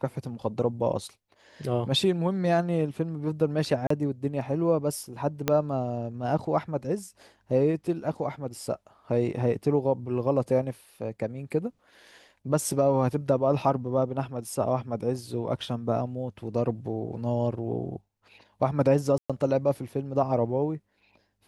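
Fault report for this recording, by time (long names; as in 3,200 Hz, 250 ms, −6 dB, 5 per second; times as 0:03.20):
0:03.87–0:03.90: drop-out 34 ms
0:05.48: click −9 dBFS
0:19.18–0:19.30: drop-out 116 ms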